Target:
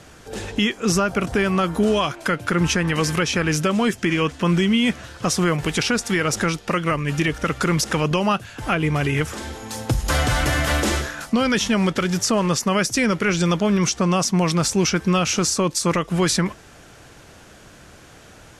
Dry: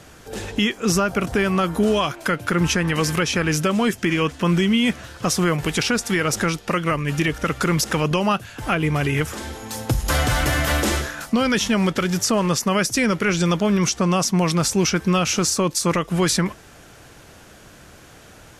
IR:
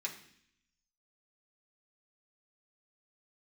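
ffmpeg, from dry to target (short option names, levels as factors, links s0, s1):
-af "lowpass=11000"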